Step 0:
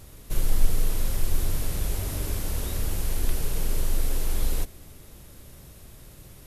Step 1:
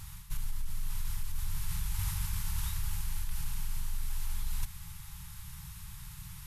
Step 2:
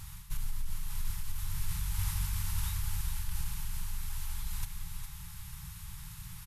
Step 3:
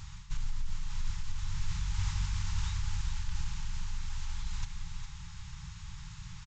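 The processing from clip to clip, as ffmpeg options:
-af "afftfilt=real='re*(1-between(b*sr/4096,190,800))':imag='im*(1-between(b*sr/4096,190,800))':win_size=4096:overlap=0.75,alimiter=limit=-17.5dB:level=0:latency=1:release=95,areverse,acompressor=threshold=-30dB:ratio=16,areverse,volume=2dB"
-af "aecho=1:1:407:0.398"
-af "aresample=16000,aresample=44100,volume=1dB"

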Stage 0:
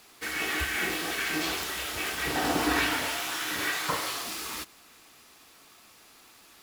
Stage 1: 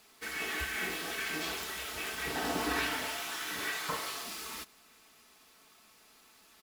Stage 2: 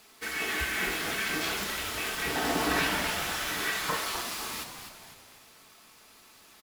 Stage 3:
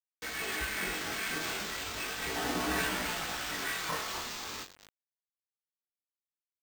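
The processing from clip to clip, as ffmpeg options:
-af "aecho=1:1:4.6:0.36,volume=-6.5dB"
-filter_complex "[0:a]asplit=6[a][b][c][d][e][f];[b]adelay=252,afreqshift=-110,volume=-8dB[g];[c]adelay=504,afreqshift=-220,volume=-14.6dB[h];[d]adelay=756,afreqshift=-330,volume=-21.1dB[i];[e]adelay=1008,afreqshift=-440,volume=-27.7dB[j];[f]adelay=1260,afreqshift=-550,volume=-34.2dB[k];[a][g][h][i][j][k]amix=inputs=6:normalize=0,volume=4.5dB"
-af "aresample=16000,acrusher=bits=5:mix=0:aa=0.000001,aresample=44100,flanger=delay=16:depth=7.8:speed=0.36,acrusher=samples=4:mix=1:aa=0.000001,volume=-1.5dB"

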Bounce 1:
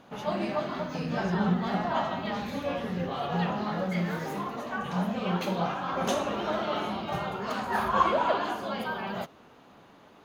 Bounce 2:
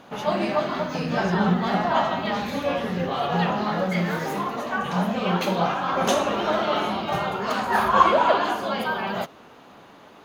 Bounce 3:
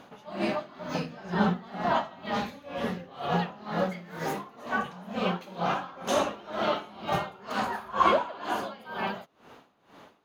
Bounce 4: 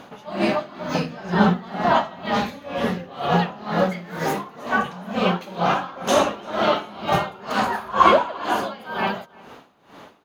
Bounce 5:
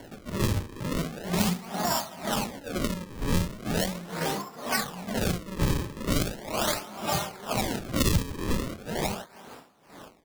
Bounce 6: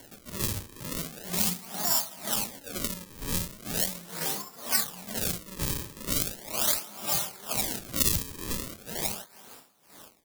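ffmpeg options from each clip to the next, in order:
-af "lowshelf=f=230:g=-5,volume=7.5dB"
-af "aeval=exprs='val(0)*pow(10,-21*(0.5-0.5*cos(2*PI*2.1*n/s))/20)':c=same,volume=-1.5dB"
-filter_complex "[0:a]asplit=2[a][b];[b]adelay=344,volume=-24dB,highshelf=f=4k:g=-7.74[c];[a][c]amix=inputs=2:normalize=0,volume=8dB"
-filter_complex "[0:a]acrusher=samples=35:mix=1:aa=0.000001:lfo=1:lforange=56:lforate=0.39,acrossover=split=140|3000[a][b][c];[b]acompressor=threshold=-24dB:ratio=6[d];[a][d][c]amix=inputs=3:normalize=0,volume=-2.5dB"
-af "crystalizer=i=4:c=0,volume=-8.5dB"

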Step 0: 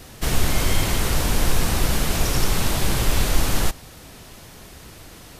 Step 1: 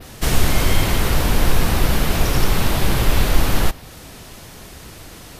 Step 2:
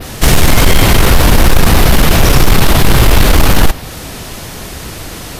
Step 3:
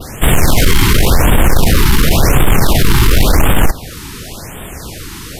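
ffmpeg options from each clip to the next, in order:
-af "adynamicequalizer=threshold=0.00708:dfrequency=7600:dqfactor=0.8:tfrequency=7600:tqfactor=0.8:attack=5:release=100:ratio=0.375:range=3.5:mode=cutabove:tftype=bell,volume=4dB"
-af "aeval=exprs='0.891*sin(PI/2*2.82*val(0)/0.891)':c=same"
-af "afftfilt=real='re*(1-between(b*sr/1024,560*pow(5300/560,0.5+0.5*sin(2*PI*0.92*pts/sr))/1.41,560*pow(5300/560,0.5+0.5*sin(2*PI*0.92*pts/sr))*1.41))':imag='im*(1-between(b*sr/1024,560*pow(5300/560,0.5+0.5*sin(2*PI*0.92*pts/sr))/1.41,560*pow(5300/560,0.5+0.5*sin(2*PI*0.92*pts/sr))*1.41))':win_size=1024:overlap=0.75,volume=-2dB"

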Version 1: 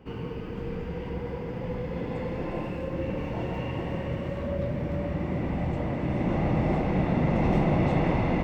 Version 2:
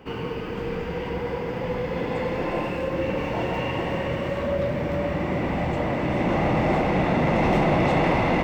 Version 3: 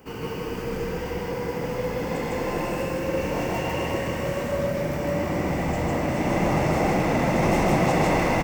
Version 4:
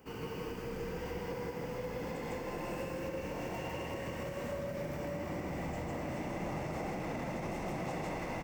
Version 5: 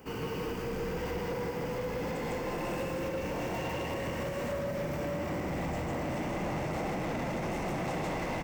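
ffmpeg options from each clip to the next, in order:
-filter_complex "[0:a]lowshelf=f=330:g=-10.5,asplit=2[a][b];[b]asoftclip=type=hard:threshold=-30dB,volume=-4dB[c];[a][c]amix=inputs=2:normalize=0,volume=6dB"
-filter_complex "[0:a]aexciter=amount=4.6:drive=6.2:freq=5.2k,asplit=2[a][b];[b]aecho=0:1:37.9|154.5:0.282|1[c];[a][c]amix=inputs=2:normalize=0,volume=-3.5dB"
-af "alimiter=limit=-21.5dB:level=0:latency=1:release=218,volume=-8.5dB"
-af "aeval=exprs='0.0335*sin(PI/2*1.41*val(0)/0.0335)':c=same"

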